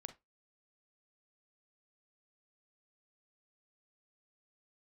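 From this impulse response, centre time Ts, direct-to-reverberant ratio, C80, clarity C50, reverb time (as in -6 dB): 7 ms, 9.0 dB, 24.0 dB, 14.0 dB, 0.20 s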